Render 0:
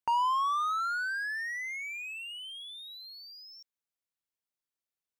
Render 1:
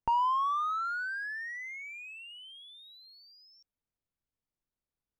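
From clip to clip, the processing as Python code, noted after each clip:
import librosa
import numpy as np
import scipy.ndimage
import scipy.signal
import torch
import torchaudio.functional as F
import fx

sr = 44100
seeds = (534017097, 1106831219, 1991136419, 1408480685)

y = fx.tilt_eq(x, sr, slope=-4.0)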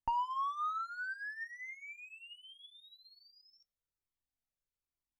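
y = fx.comb_fb(x, sr, f0_hz=260.0, decay_s=0.2, harmonics='all', damping=0.0, mix_pct=50)
y = fx.comb_cascade(y, sr, direction='falling', hz=1.2)
y = y * librosa.db_to_amplitude(3.0)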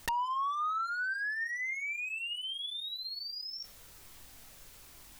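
y = (np.mod(10.0 ** (26.5 / 20.0) * x + 1.0, 2.0) - 1.0) / 10.0 ** (26.5 / 20.0)
y = fx.env_flatten(y, sr, amount_pct=70)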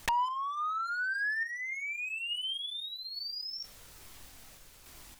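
y = fx.tremolo_random(x, sr, seeds[0], hz=3.5, depth_pct=55)
y = fx.doppler_dist(y, sr, depth_ms=0.4)
y = y * librosa.db_to_amplitude(3.5)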